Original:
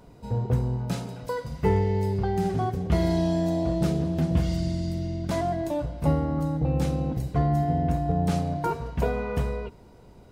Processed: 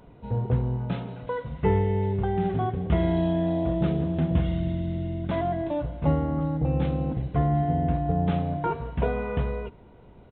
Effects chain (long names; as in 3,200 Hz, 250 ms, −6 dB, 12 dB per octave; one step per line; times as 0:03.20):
downsampling to 8,000 Hz